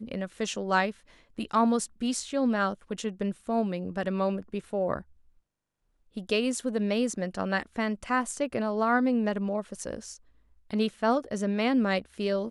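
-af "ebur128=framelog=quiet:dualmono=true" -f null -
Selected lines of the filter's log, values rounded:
Integrated loudness:
  I:         -25.9 LUFS
  Threshold: -36.3 LUFS
Loudness range:
  LRA:         3.6 LU
  Threshold: -46.9 LUFS
  LRA low:   -29.1 LUFS
  LRA high:  -25.4 LUFS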